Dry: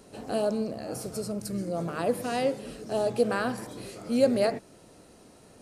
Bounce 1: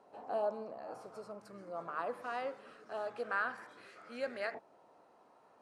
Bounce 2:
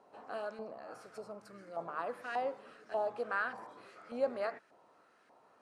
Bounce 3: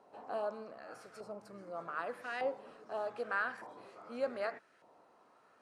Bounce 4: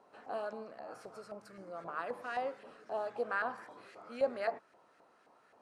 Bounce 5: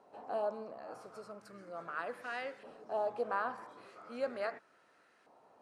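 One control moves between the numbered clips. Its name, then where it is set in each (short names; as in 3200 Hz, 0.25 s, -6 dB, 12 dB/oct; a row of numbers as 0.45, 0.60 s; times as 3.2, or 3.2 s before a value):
LFO band-pass, rate: 0.22, 1.7, 0.83, 3.8, 0.38 Hz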